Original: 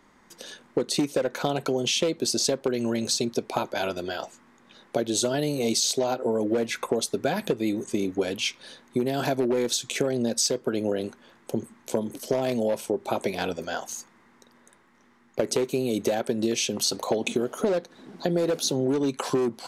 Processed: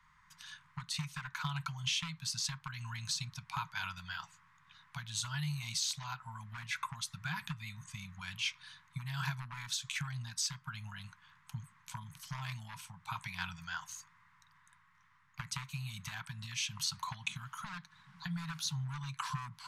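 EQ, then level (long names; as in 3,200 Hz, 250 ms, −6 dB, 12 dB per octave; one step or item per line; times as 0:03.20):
Chebyshev band-stop filter 160–1,000 Hz, order 4
high-shelf EQ 3,300 Hz −10 dB
−2.5 dB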